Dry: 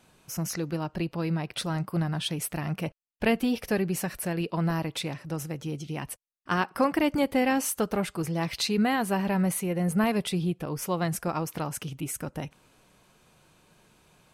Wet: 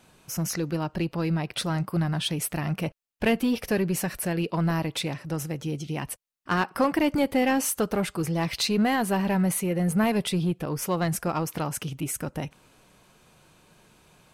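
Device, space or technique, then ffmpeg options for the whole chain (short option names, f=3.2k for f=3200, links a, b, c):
parallel distortion: -filter_complex "[0:a]asplit=2[a][b];[b]asoftclip=type=hard:threshold=-26dB,volume=-4.5dB[c];[a][c]amix=inputs=2:normalize=0,volume=-1dB"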